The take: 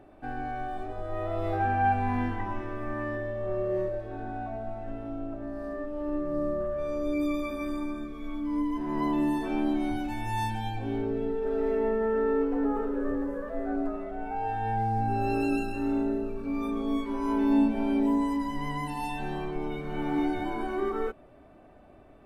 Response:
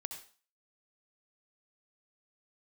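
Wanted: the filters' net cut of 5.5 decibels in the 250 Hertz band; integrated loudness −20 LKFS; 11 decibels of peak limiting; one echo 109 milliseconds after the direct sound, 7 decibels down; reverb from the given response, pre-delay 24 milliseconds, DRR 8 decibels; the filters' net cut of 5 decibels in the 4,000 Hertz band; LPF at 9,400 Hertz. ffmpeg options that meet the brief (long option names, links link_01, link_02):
-filter_complex "[0:a]lowpass=9400,equalizer=frequency=250:width_type=o:gain=-6.5,equalizer=frequency=4000:width_type=o:gain=-6.5,alimiter=level_in=3dB:limit=-24dB:level=0:latency=1,volume=-3dB,aecho=1:1:109:0.447,asplit=2[link_01][link_02];[1:a]atrim=start_sample=2205,adelay=24[link_03];[link_02][link_03]afir=irnorm=-1:irlink=0,volume=-6dB[link_04];[link_01][link_04]amix=inputs=2:normalize=0,volume=15dB"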